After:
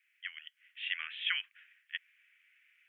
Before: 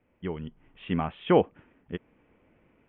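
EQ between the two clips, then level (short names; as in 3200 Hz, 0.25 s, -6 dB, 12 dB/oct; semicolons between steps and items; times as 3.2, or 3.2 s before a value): steep high-pass 1700 Hz 48 dB/oct; +7.5 dB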